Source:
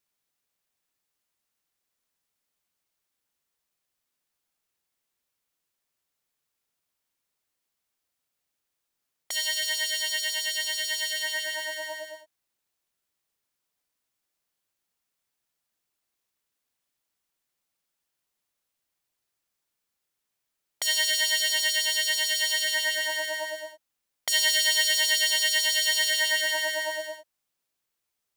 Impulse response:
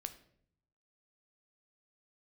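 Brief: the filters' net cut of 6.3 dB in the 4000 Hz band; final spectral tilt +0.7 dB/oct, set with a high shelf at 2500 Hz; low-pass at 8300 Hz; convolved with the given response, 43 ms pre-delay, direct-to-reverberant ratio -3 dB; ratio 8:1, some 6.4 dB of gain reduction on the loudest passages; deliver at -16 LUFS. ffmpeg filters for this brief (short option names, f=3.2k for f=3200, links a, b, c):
-filter_complex "[0:a]lowpass=8.3k,highshelf=f=2.5k:g=-5.5,equalizer=f=4k:t=o:g=-3.5,acompressor=threshold=-30dB:ratio=8,asplit=2[a][b];[1:a]atrim=start_sample=2205,adelay=43[c];[b][c]afir=irnorm=-1:irlink=0,volume=6dB[d];[a][d]amix=inputs=2:normalize=0,volume=13dB"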